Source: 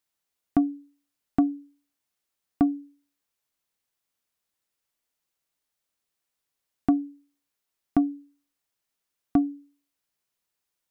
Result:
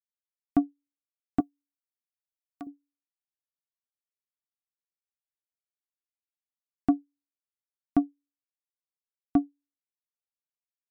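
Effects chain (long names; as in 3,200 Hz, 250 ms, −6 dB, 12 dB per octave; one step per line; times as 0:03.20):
0:01.40–0:02.67: spectral tilt +4.5 dB per octave
expander for the loud parts 2.5 to 1, over −40 dBFS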